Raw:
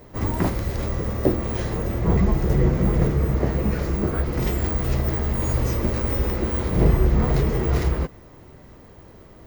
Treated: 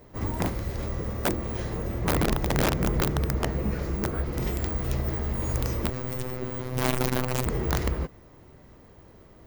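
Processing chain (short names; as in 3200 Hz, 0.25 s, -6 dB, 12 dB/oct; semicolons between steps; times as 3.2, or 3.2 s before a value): wrapped overs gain 11.5 dB; 5.9–7.46 robotiser 127 Hz; gain -5.5 dB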